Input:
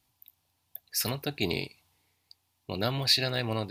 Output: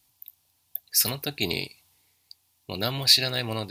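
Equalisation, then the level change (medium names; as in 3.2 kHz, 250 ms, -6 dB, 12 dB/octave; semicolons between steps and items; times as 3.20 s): treble shelf 3.5 kHz +10 dB; 0.0 dB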